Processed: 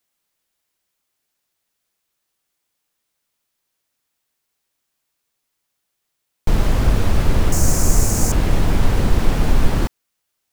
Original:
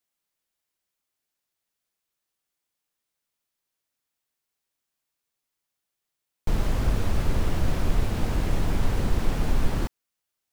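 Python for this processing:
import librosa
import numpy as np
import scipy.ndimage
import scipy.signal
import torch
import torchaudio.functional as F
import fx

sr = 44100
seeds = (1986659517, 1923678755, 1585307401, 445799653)

y = fx.high_shelf_res(x, sr, hz=4900.0, db=12.0, q=3.0, at=(7.52, 8.32))
y = F.gain(torch.from_numpy(y), 8.0).numpy()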